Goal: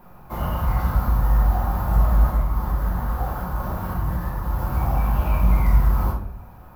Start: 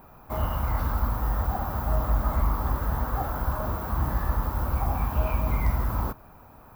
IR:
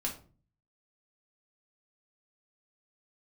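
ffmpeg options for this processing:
-filter_complex "[0:a]asplit=3[link_01][link_02][link_03];[link_01]afade=type=out:start_time=2.3:duration=0.02[link_04];[link_02]acompressor=threshold=-25dB:ratio=6,afade=type=in:start_time=2.3:duration=0.02,afade=type=out:start_time=4.58:duration=0.02[link_05];[link_03]afade=type=in:start_time=4.58:duration=0.02[link_06];[link_04][link_05][link_06]amix=inputs=3:normalize=0[link_07];[1:a]atrim=start_sample=2205,asetrate=29988,aresample=44100[link_08];[link_07][link_08]afir=irnorm=-1:irlink=0,volume=-2dB"

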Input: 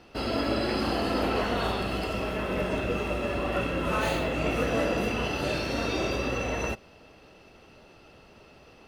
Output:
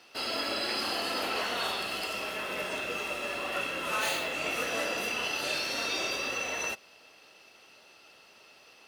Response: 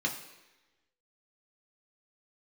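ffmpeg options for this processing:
-af "highpass=frequency=880:poles=1,highshelf=frequency=2800:gain=9,volume=-2dB"

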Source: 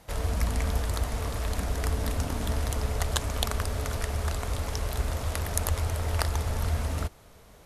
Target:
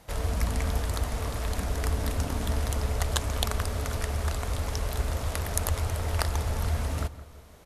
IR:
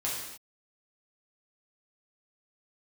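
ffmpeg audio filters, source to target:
-filter_complex "[0:a]asplit=2[link_01][link_02];[link_02]adelay=167,lowpass=frequency=2000:poles=1,volume=-15dB,asplit=2[link_03][link_04];[link_04]adelay=167,lowpass=frequency=2000:poles=1,volume=0.47,asplit=2[link_05][link_06];[link_06]adelay=167,lowpass=frequency=2000:poles=1,volume=0.47,asplit=2[link_07][link_08];[link_08]adelay=167,lowpass=frequency=2000:poles=1,volume=0.47[link_09];[link_01][link_03][link_05][link_07][link_09]amix=inputs=5:normalize=0"

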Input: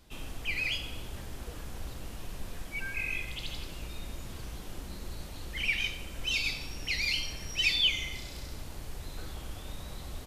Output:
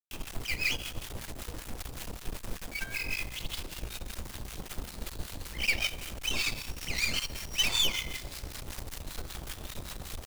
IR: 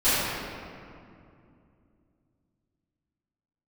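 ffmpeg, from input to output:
-filter_complex "[0:a]acrusher=bits=6:mix=0:aa=0.000001,aeval=exprs='0.211*(cos(1*acos(clip(val(0)/0.211,-1,1)))-cos(1*PI/2))+0.0944*(cos(4*acos(clip(val(0)/0.211,-1,1)))-cos(4*PI/2))+0.0944*(cos(6*acos(clip(val(0)/0.211,-1,1)))-cos(6*PI/2))':channel_layout=same,acrossover=split=980[link_01][link_02];[link_01]aeval=exprs='val(0)*(1-0.7/2+0.7/2*cos(2*PI*5.2*n/s))':channel_layout=same[link_03];[link_02]aeval=exprs='val(0)*(1-0.7/2-0.7/2*cos(2*PI*5.2*n/s))':channel_layout=same[link_04];[link_03][link_04]amix=inputs=2:normalize=0,volume=2dB"

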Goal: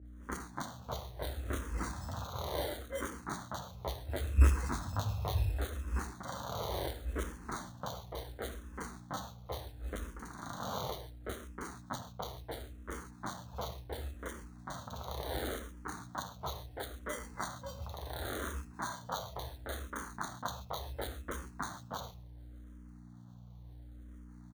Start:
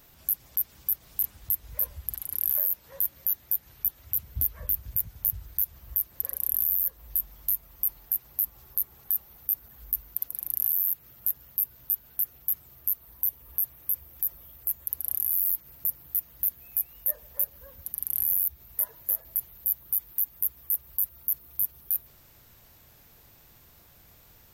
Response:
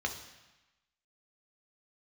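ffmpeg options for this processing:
-filter_complex "[0:a]asoftclip=type=tanh:threshold=-19dB,lowpass=7700,agate=range=-33dB:threshold=-47dB:ratio=3:detection=peak[link_01];[1:a]atrim=start_sample=2205,afade=type=out:start_time=0.2:duration=0.01,atrim=end_sample=9261[link_02];[link_01][link_02]afir=irnorm=-1:irlink=0,acrusher=samples=17:mix=1:aa=0.000001,aeval=exprs='val(0)+0.002*(sin(2*PI*60*n/s)+sin(2*PI*2*60*n/s)/2+sin(2*PI*3*60*n/s)/3+sin(2*PI*4*60*n/s)/4+sin(2*PI*5*60*n/s)/5)':channel_layout=same,highpass=51,bandreject=frequency=5000:width=17,acrossover=split=2200[link_03][link_04];[link_04]adelay=30[link_05];[link_03][link_05]amix=inputs=2:normalize=0,asplit=2[link_06][link_07];[link_07]afreqshift=-0.71[link_08];[link_06][link_08]amix=inputs=2:normalize=1,volume=8dB"

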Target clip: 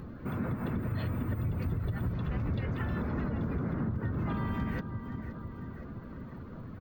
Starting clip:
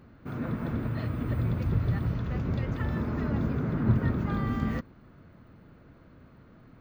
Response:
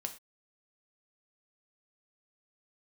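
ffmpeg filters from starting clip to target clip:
-filter_complex "[0:a]acrossover=split=2300[link_01][link_02];[link_02]acontrast=53[link_03];[link_01][link_03]amix=inputs=2:normalize=0,aecho=1:1:521|1042|1563|2084:0.15|0.0703|0.0331|0.0155,asplit=3[link_04][link_05][link_06];[link_05]asetrate=35002,aresample=44100,atempo=1.25992,volume=-4dB[link_07];[link_06]asetrate=37084,aresample=44100,atempo=1.18921,volume=-9dB[link_08];[link_04][link_07][link_08]amix=inputs=3:normalize=0,asplit=2[link_09][link_10];[link_10]volume=27dB,asoftclip=hard,volume=-27dB,volume=-8dB[link_11];[link_09][link_11]amix=inputs=2:normalize=0,alimiter=limit=-18dB:level=0:latency=1:release=153,acompressor=threshold=-51dB:ratio=2,afftdn=noise_reduction=12:noise_floor=-58,volume=8.5dB"

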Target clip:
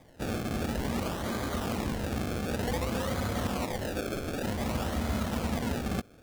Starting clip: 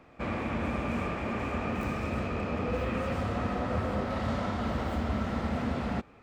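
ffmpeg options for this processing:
ffmpeg -i in.wav -filter_complex "[0:a]asettb=1/sr,asplit=3[link_01][link_02][link_03];[link_01]atrim=end=3.654[link_04];[link_02]atrim=start=3.65:end=4.43,asetpts=PTS-STARTPTS,afade=type=in:duration=0.004:curve=qsin,afade=type=out:start_time=0.776:duration=0.004:curve=qsin,bass=frequency=250:gain=-10,treble=frequency=4000:gain=12[link_05];[link_03]atrim=start=4.426[link_06];[link_04][link_05]acrossfade=duration=0.004:curve1=hsin:curve2=qsin[link_07];[link_07][link_06]acrossfade=duration=0.004:curve1=qsin:curve2=hsin,acrusher=samples=31:mix=1:aa=0.000001:lfo=1:lforange=31:lforate=0.54" out.wav

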